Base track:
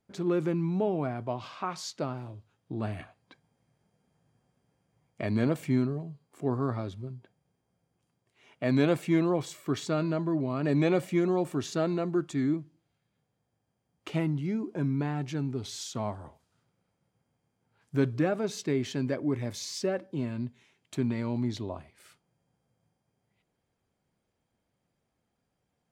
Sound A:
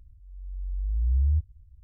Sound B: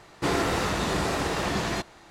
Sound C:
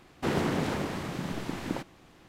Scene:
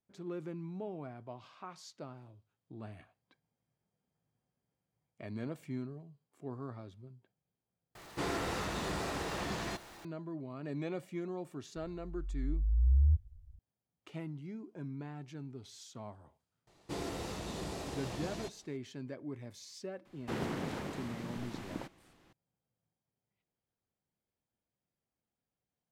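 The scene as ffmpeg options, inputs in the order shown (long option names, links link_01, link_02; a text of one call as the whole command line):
ffmpeg -i bed.wav -i cue0.wav -i cue1.wav -i cue2.wav -filter_complex "[2:a]asplit=2[link_01][link_02];[0:a]volume=-13.5dB[link_03];[link_01]aeval=exprs='val(0)+0.5*0.0112*sgn(val(0))':channel_layout=same[link_04];[link_02]equalizer=frequency=1500:width_type=o:width=1.4:gain=-8.5[link_05];[link_03]asplit=2[link_06][link_07];[link_06]atrim=end=7.954[link_08];[link_04]atrim=end=2.1,asetpts=PTS-STARTPTS,volume=-11dB[link_09];[link_07]atrim=start=10.046[link_10];[1:a]atrim=end=1.83,asetpts=PTS-STARTPTS,volume=-3dB,afade=type=in:duration=0.004:curve=hsin,afade=type=out:start_time=1.826:duration=0.004:curve=hsin,adelay=11760[link_11];[link_05]atrim=end=2.1,asetpts=PTS-STARTPTS,volume=-12.5dB,afade=type=in:duration=0.004:curve=hsin,afade=type=out:start_time=2.096:duration=0.004:curve=hsin,adelay=16670[link_12];[3:a]atrim=end=2.28,asetpts=PTS-STARTPTS,volume=-9dB,afade=type=in:duration=0.004:curve=hsin,afade=type=out:start_time=2.276:duration=0.004:curve=hsin,adelay=20050[link_13];[link_08][link_09]acrossfade=duration=0.004:curve1=hsin:curve2=hsin[link_14];[link_14][link_10]acrossfade=duration=0.004:curve1=hsin:curve2=hsin[link_15];[link_15][link_11][link_12][link_13]amix=inputs=4:normalize=0" out.wav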